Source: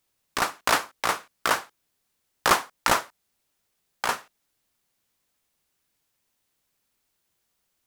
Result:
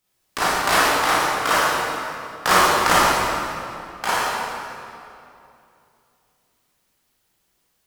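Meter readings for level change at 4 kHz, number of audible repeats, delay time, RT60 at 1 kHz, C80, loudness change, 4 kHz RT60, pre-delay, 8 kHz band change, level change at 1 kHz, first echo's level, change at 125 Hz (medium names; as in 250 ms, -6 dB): +7.5 dB, no echo, no echo, 2.6 s, -2.0 dB, +6.5 dB, 1.9 s, 22 ms, +6.5 dB, +8.5 dB, no echo, +10.0 dB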